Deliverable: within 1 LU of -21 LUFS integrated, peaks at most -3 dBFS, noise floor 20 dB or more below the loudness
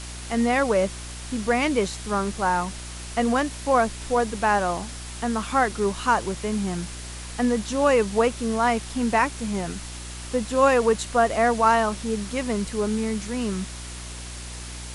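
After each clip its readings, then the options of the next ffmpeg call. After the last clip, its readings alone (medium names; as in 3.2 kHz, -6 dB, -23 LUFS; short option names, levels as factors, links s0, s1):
hum 60 Hz; highest harmonic 360 Hz; hum level -36 dBFS; noise floor -36 dBFS; noise floor target -44 dBFS; loudness -24.0 LUFS; peak level -7.0 dBFS; loudness target -21.0 LUFS
-> -af "bandreject=f=60:t=h:w=4,bandreject=f=120:t=h:w=4,bandreject=f=180:t=h:w=4,bandreject=f=240:t=h:w=4,bandreject=f=300:t=h:w=4,bandreject=f=360:t=h:w=4"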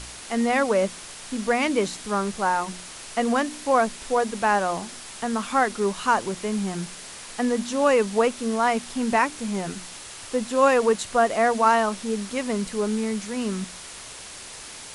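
hum not found; noise floor -40 dBFS; noise floor target -44 dBFS
-> -af "afftdn=nr=6:nf=-40"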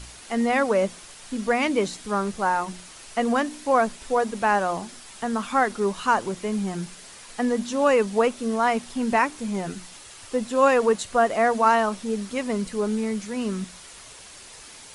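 noise floor -45 dBFS; loudness -24.0 LUFS; peak level -7.5 dBFS; loudness target -21.0 LUFS
-> -af "volume=1.41"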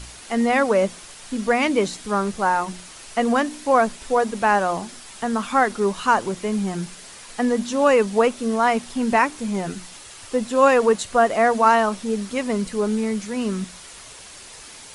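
loudness -21.0 LUFS; peak level -4.5 dBFS; noise floor -42 dBFS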